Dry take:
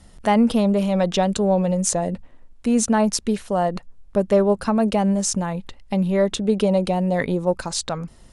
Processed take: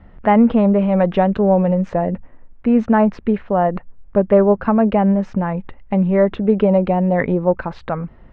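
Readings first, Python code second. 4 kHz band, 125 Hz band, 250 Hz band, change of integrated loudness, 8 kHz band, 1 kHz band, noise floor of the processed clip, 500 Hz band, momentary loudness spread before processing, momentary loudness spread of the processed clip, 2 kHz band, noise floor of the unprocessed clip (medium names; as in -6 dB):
under -10 dB, +4.5 dB, +4.5 dB, +4.0 dB, under -35 dB, +4.5 dB, -43 dBFS, +4.5 dB, 9 LU, 10 LU, +3.0 dB, -48 dBFS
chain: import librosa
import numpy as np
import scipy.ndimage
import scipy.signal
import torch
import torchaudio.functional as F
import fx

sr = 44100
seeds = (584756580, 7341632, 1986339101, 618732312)

y = scipy.signal.sosfilt(scipy.signal.butter(4, 2200.0, 'lowpass', fs=sr, output='sos'), x)
y = F.gain(torch.from_numpy(y), 4.5).numpy()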